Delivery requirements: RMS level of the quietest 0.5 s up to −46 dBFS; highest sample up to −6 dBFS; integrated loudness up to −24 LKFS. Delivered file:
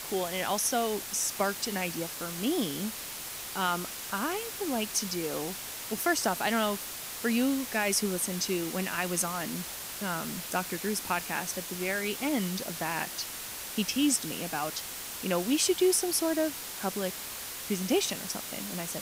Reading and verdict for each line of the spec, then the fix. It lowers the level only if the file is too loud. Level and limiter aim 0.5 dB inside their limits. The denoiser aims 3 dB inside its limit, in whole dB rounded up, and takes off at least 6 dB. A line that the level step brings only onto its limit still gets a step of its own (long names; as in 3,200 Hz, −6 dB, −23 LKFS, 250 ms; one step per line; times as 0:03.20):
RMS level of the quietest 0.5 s −40 dBFS: out of spec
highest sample −13.0 dBFS: in spec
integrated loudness −30.5 LKFS: in spec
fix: broadband denoise 9 dB, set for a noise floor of −40 dBFS